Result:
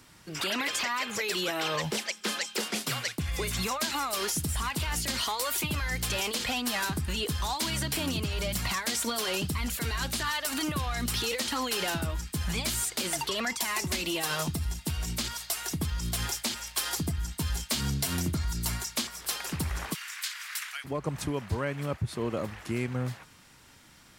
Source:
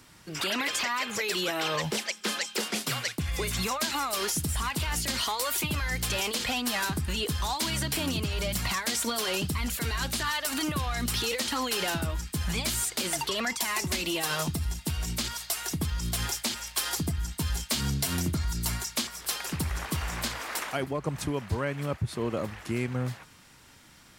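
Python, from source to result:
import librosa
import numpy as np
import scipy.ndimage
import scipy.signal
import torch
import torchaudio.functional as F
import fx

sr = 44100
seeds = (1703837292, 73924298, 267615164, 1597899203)

y = fx.highpass(x, sr, hz=1500.0, slope=24, at=(19.93, 20.84), fade=0.02)
y = F.gain(torch.from_numpy(y), -1.0).numpy()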